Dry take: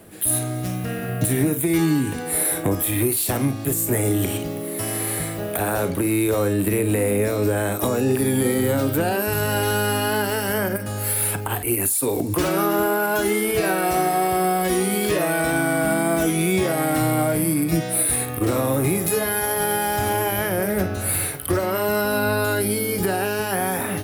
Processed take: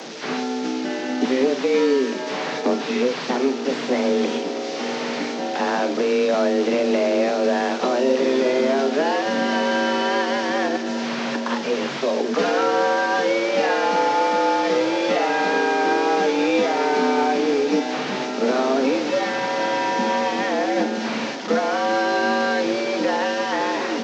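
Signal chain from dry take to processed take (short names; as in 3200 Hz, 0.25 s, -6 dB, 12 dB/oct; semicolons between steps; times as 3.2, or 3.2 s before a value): delta modulation 32 kbps, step -29.5 dBFS; diffused feedback echo 0.979 s, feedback 71%, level -16 dB; frequency shift +130 Hz; gain +1 dB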